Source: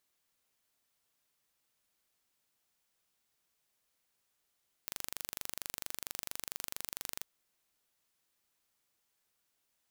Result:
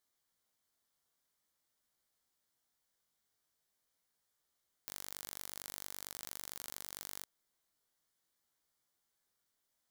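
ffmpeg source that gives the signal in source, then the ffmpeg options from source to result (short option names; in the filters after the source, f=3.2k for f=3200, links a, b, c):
-f lavfi -i "aevalsrc='0.282*eq(mod(n,1807),0)':d=2.36:s=44100"
-af "equalizer=f=2.6k:t=o:w=0.23:g=-11.5,flanger=delay=16:depth=7.3:speed=0.46"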